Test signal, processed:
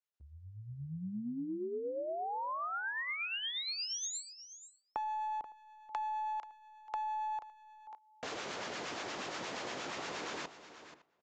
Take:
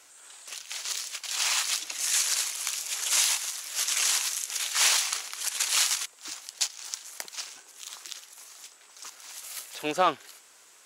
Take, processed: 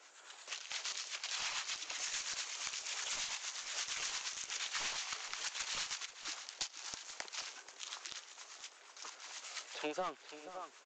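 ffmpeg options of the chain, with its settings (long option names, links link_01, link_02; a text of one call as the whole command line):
ffmpeg -i in.wav -filter_complex "[0:a]highpass=310,highshelf=frequency=4600:gain=-8,asplit=2[link_01][link_02];[link_02]adelay=559.8,volume=-23dB,highshelf=frequency=4000:gain=-12.6[link_03];[link_01][link_03]amix=inputs=2:normalize=0,acrossover=split=680[link_04][link_05];[link_05]aeval=exprs='clip(val(0),-1,0.0531)':channel_layout=same[link_06];[link_04][link_06]amix=inputs=2:normalize=0,acrossover=split=860[link_07][link_08];[link_07]aeval=exprs='val(0)*(1-0.5/2+0.5/2*cos(2*PI*8.5*n/s))':channel_layout=same[link_09];[link_08]aeval=exprs='val(0)*(1-0.5/2-0.5/2*cos(2*PI*8.5*n/s))':channel_layout=same[link_10];[link_09][link_10]amix=inputs=2:normalize=0,acompressor=threshold=-39dB:ratio=6,asplit=2[link_11][link_12];[link_12]aecho=0:1:483:0.211[link_13];[link_11][link_13]amix=inputs=2:normalize=0,aresample=16000,aresample=44100,volume=2dB" out.wav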